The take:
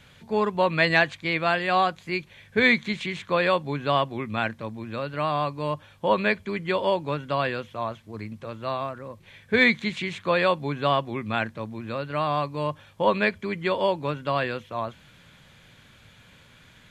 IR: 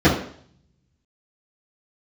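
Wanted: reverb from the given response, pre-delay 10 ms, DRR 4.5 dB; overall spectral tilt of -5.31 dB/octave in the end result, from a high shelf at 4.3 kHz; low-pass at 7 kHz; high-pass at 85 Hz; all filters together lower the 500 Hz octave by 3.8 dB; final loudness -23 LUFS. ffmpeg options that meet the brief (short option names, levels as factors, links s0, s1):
-filter_complex "[0:a]highpass=85,lowpass=7000,equalizer=f=500:t=o:g=-4.5,highshelf=f=4300:g=-9,asplit=2[s0][s1];[1:a]atrim=start_sample=2205,adelay=10[s2];[s1][s2]afir=irnorm=-1:irlink=0,volume=0.0422[s3];[s0][s3]amix=inputs=2:normalize=0,volume=1.19"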